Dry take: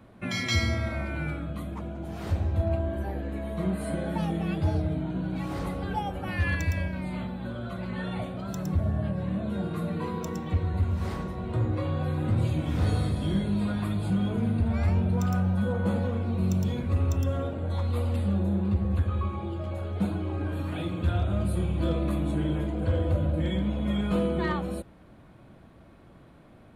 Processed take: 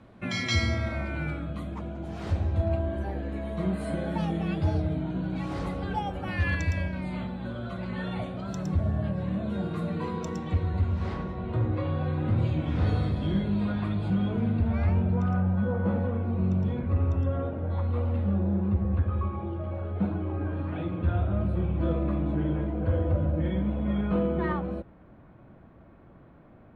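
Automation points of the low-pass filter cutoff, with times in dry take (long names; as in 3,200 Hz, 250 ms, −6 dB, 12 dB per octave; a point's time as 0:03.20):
0:10.51 7,200 Hz
0:11.21 3,600 Hz
0:14.56 3,600 Hz
0:15.37 1,900 Hz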